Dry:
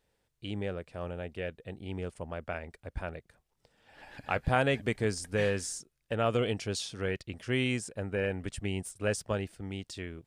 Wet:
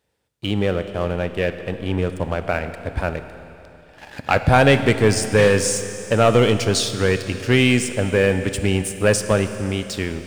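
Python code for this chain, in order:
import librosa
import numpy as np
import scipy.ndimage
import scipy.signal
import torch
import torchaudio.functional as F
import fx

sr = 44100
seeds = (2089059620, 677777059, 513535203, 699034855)

y = scipy.signal.sosfilt(scipy.signal.butter(4, 55.0, 'highpass', fs=sr, output='sos'), x)
y = fx.leveller(y, sr, passes=2)
y = fx.rev_schroeder(y, sr, rt60_s=3.1, comb_ms=25, drr_db=9.5)
y = y * librosa.db_to_amplitude(7.5)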